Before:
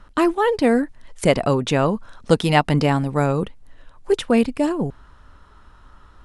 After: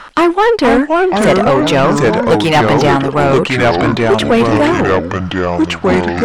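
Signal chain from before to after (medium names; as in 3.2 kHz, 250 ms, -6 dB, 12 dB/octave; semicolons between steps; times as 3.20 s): ever faster or slower copies 425 ms, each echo -4 st, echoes 3; overdrive pedal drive 24 dB, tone 2.6 kHz, clips at -1 dBFS; tape noise reduction on one side only encoder only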